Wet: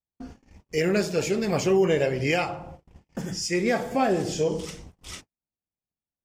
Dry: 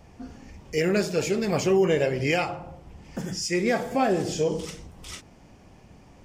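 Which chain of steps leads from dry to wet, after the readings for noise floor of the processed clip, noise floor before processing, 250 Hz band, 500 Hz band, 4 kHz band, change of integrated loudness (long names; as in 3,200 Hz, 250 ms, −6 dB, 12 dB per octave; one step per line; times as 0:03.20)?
below −85 dBFS, −52 dBFS, 0.0 dB, 0.0 dB, 0.0 dB, 0.0 dB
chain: noise gate −42 dBFS, range −48 dB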